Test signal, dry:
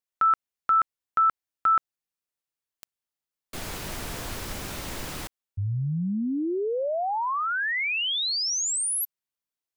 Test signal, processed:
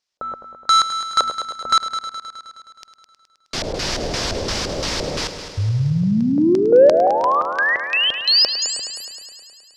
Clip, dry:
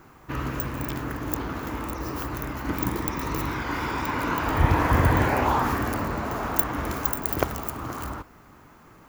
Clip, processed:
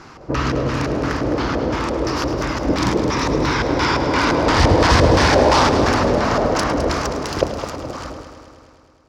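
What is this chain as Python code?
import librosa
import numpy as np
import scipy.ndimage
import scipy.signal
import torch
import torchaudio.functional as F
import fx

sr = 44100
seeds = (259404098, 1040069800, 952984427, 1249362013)

p1 = fx.fade_out_tail(x, sr, length_s=2.71)
p2 = fx.low_shelf(p1, sr, hz=390.0, db=-3.0)
p3 = (np.mod(10.0 ** (19.5 / 20.0) * p2 + 1.0, 2.0) - 1.0) / 10.0 ** (19.5 / 20.0)
p4 = p2 + (p3 * librosa.db_to_amplitude(-6.0))
p5 = fx.filter_lfo_lowpass(p4, sr, shape='square', hz=2.9, low_hz=550.0, high_hz=5200.0, q=3.0)
p6 = fx.cheby_harmonics(p5, sr, harmonics=(5,), levels_db=(-30,), full_scale_db=-6.5)
p7 = p6 + fx.echo_heads(p6, sr, ms=105, heads='first and second', feedback_pct=63, wet_db=-13, dry=0)
y = p7 * librosa.db_to_amplitude(6.0)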